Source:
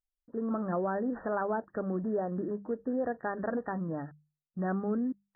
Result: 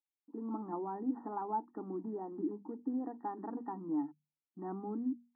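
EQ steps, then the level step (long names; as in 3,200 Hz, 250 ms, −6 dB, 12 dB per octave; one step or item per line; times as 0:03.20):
formant filter u
parametric band 89 Hz −14 dB 1.3 octaves
mains-hum notches 60/120/180/240 Hz
+8.5 dB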